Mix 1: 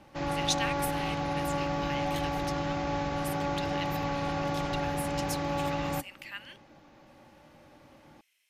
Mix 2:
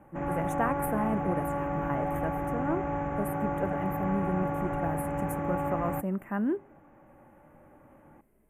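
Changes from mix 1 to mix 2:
speech: remove resonant high-pass 2500 Hz, resonance Q 2; master: add Butterworth band-stop 4500 Hz, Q 0.53

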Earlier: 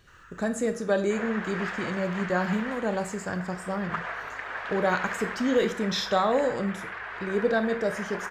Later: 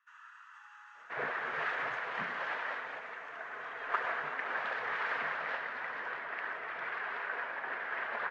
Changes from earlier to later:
speech: muted; reverb: off; master: add air absorption 120 m

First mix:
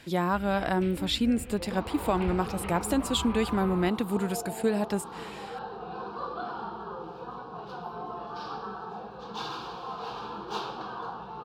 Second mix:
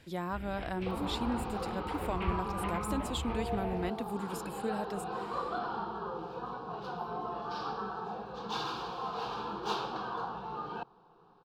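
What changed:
speech -9.5 dB; second sound: entry -0.85 s

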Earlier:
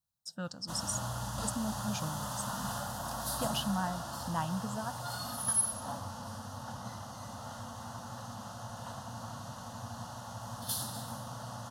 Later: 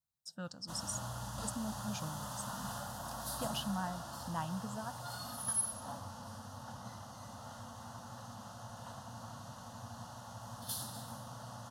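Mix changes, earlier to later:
speech -4.5 dB; background -5.0 dB

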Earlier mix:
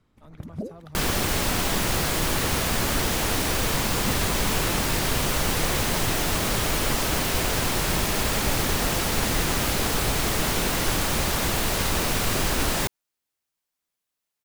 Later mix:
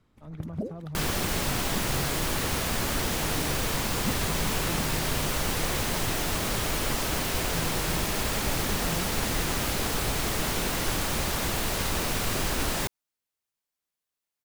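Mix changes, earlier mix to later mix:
speech: add tilt -3 dB/oct; second sound -4.0 dB

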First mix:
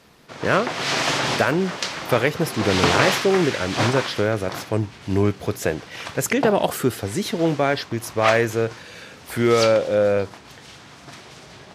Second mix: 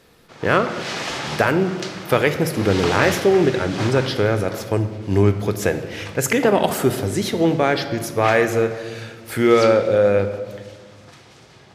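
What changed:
background -8.5 dB; reverb: on, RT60 1.6 s

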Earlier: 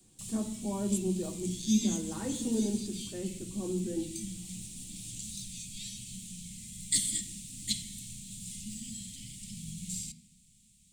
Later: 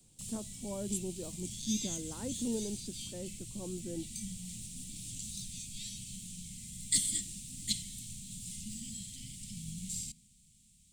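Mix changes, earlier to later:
speech: send off; background: send -11.5 dB

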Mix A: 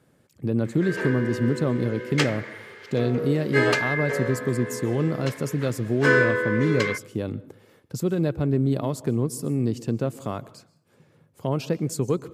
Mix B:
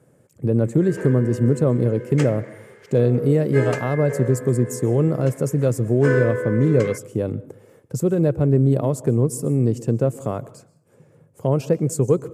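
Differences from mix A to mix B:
background -7.0 dB; master: add graphic EQ 125/500/4000/8000 Hz +7/+8/-9/+7 dB

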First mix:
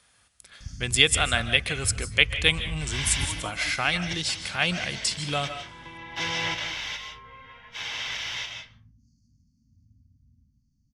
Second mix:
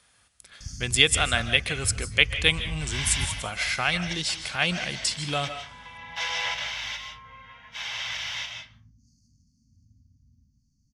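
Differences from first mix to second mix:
first sound: add high shelf 4100 Hz +12 dB; second sound: add steep high-pass 540 Hz 36 dB/oct

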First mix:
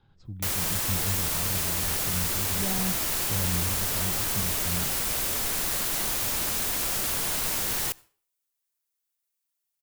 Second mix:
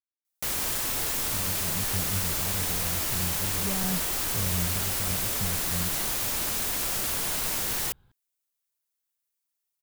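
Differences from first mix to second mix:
speech: entry +1.05 s; reverb: off

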